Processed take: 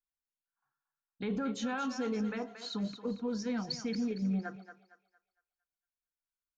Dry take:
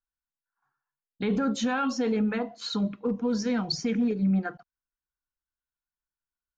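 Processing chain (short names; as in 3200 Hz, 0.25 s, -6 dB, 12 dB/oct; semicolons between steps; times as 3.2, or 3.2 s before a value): thinning echo 0.229 s, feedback 37%, high-pass 530 Hz, level -9 dB; gain -8 dB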